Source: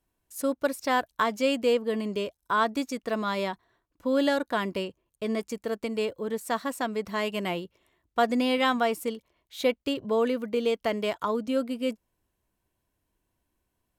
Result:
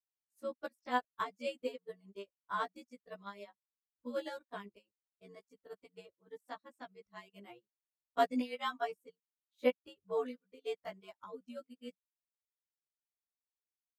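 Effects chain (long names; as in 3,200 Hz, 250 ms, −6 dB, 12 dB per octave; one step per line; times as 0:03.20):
every overlapping window played backwards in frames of 40 ms
reverb reduction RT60 1.7 s
expander for the loud parts 2.5 to 1, over −44 dBFS
level −2 dB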